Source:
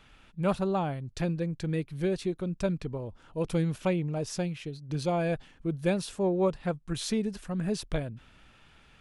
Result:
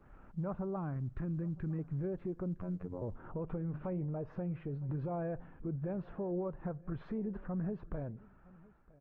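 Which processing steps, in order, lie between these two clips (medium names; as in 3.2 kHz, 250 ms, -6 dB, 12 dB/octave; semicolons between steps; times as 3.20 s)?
fade out at the end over 1.96 s; recorder AGC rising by 11 dB/s; low-pass 1.4 kHz 24 dB/octave; 0.76–1.79 s: high-order bell 600 Hz -9.5 dB 1.3 oct; 3.54–4.01 s: hum notches 50/100/150/200/250/300/350/400 Hz; compression 8:1, threshold -29 dBFS, peak gain reduction 8.5 dB; peak limiter -32 dBFS, peak gain reduction 9.5 dB; 2.59–3.02 s: robot voice 89.9 Hz; delay 961 ms -23 dB; on a send at -22 dB: reverberation RT60 0.75 s, pre-delay 5 ms; on the sum: trim +1 dB; Opus 20 kbps 48 kHz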